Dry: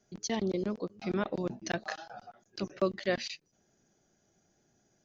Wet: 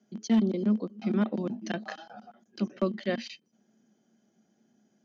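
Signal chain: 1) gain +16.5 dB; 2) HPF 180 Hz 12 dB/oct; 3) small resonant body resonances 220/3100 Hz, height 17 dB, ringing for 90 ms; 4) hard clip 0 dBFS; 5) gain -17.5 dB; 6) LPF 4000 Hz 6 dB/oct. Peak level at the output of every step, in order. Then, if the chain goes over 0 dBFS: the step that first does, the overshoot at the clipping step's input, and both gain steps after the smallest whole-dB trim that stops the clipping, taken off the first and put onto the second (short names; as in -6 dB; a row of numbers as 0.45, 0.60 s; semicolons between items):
+1.0, -1.0, +3.5, 0.0, -17.5, -17.5 dBFS; step 1, 3.5 dB; step 1 +12.5 dB, step 5 -13.5 dB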